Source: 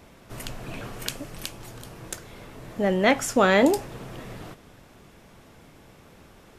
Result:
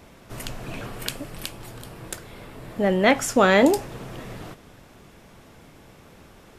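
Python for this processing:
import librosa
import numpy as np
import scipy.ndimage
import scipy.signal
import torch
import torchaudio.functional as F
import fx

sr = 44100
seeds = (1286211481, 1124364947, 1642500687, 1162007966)

y = fx.peak_eq(x, sr, hz=6200.0, db=-5.5, octaves=0.36, at=(0.86, 3.15))
y = F.gain(torch.from_numpy(y), 2.0).numpy()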